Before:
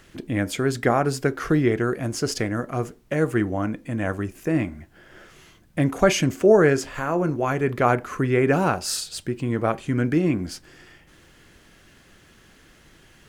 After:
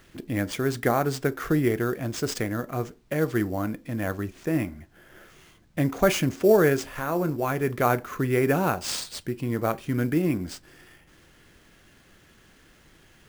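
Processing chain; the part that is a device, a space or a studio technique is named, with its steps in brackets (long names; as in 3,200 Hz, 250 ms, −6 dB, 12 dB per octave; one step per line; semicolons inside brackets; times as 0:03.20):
early companding sampler (sample-rate reduction 13,000 Hz, jitter 0%; log-companded quantiser 8 bits)
level −3 dB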